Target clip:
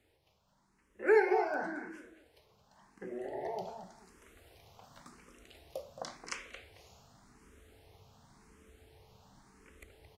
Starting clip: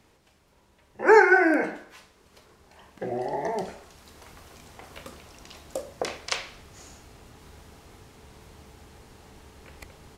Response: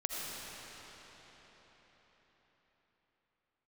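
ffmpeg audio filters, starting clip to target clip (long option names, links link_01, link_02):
-filter_complex "[0:a]asplit=2[link_01][link_02];[link_02]adelay=221,lowpass=frequency=2400:poles=1,volume=-7dB,asplit=2[link_03][link_04];[link_04]adelay=221,lowpass=frequency=2400:poles=1,volume=0.25,asplit=2[link_05][link_06];[link_06]adelay=221,lowpass=frequency=2400:poles=1,volume=0.25[link_07];[link_03][link_05][link_07]amix=inputs=3:normalize=0[link_08];[link_01][link_08]amix=inputs=2:normalize=0,asplit=2[link_09][link_10];[link_10]afreqshift=0.91[link_11];[link_09][link_11]amix=inputs=2:normalize=1,volume=-8.5dB"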